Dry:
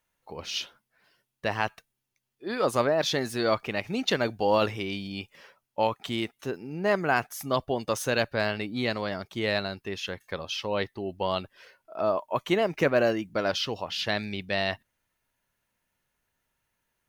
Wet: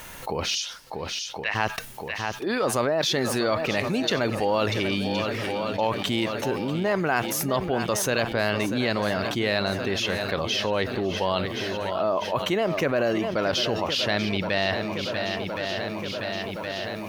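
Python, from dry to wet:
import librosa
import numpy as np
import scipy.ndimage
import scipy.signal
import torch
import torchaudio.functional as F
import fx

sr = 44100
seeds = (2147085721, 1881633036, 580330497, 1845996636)

p1 = fx.bandpass_q(x, sr, hz=fx.line((0.54, 7100.0), (1.54, 2100.0)), q=2.4, at=(0.54, 1.54), fade=0.02)
p2 = p1 + fx.echo_swing(p1, sr, ms=1068, ratio=1.5, feedback_pct=44, wet_db=-14.5, dry=0)
p3 = fx.env_flatten(p2, sr, amount_pct=70)
y = F.gain(torch.from_numpy(p3), -2.5).numpy()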